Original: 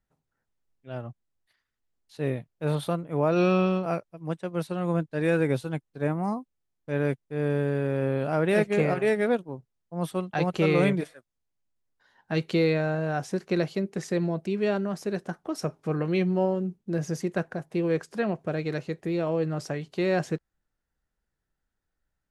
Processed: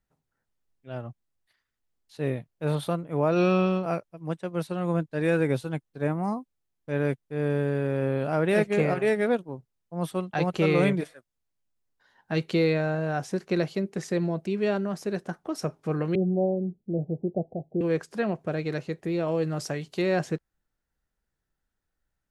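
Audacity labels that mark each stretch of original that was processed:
16.150000	17.810000	steep low-pass 770 Hz 72 dB/oct
19.280000	20.020000	high shelf 3900 Hz +7.5 dB

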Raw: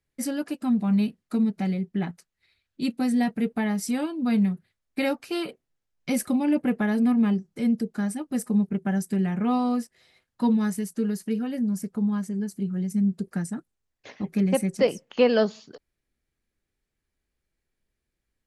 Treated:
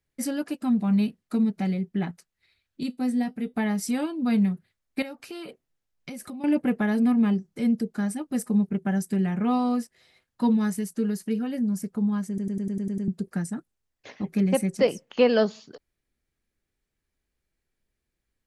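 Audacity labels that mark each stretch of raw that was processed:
2.830000	3.540000	resonator 250 Hz, decay 0.16 s
5.020000	6.440000	compressor 12:1, threshold -34 dBFS
12.280000	12.280000	stutter in place 0.10 s, 8 plays

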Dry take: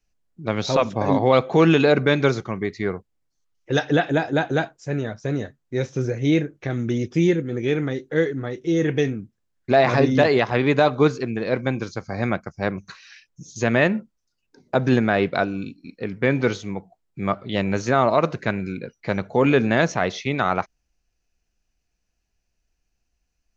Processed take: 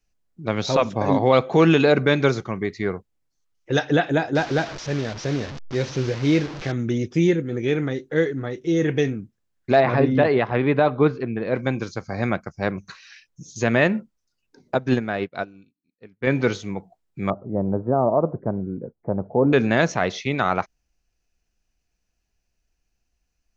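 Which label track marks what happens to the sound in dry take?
4.350000	6.720000	delta modulation 32 kbps, step -28 dBFS
9.800000	11.550000	air absorption 310 m
14.750000	16.270000	upward expander 2.5:1, over -39 dBFS
17.300000	19.530000	inverse Chebyshev low-pass stop band from 3000 Hz, stop band 60 dB

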